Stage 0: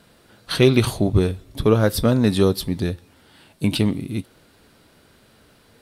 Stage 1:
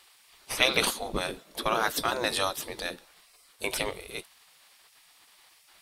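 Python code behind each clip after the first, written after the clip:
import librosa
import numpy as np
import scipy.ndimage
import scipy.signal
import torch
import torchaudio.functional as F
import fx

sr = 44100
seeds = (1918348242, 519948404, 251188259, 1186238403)

y = fx.spec_gate(x, sr, threshold_db=-15, keep='weak')
y = y * librosa.db_to_amplitude(2.5)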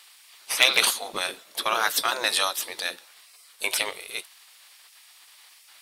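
y = np.minimum(x, 2.0 * 10.0 ** (-11.5 / 20.0) - x)
y = fx.highpass(y, sr, hz=1400.0, slope=6)
y = y * librosa.db_to_amplitude(7.0)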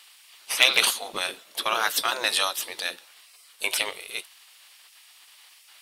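y = fx.peak_eq(x, sr, hz=2900.0, db=4.0, octaves=0.36)
y = y * librosa.db_to_amplitude(-1.0)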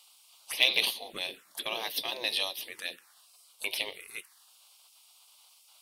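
y = fx.env_phaser(x, sr, low_hz=280.0, high_hz=1400.0, full_db=-25.5)
y = y * librosa.db_to_amplitude(-4.5)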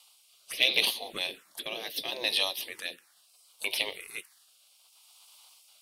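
y = fx.rotary(x, sr, hz=0.7)
y = y * librosa.db_to_amplitude(3.5)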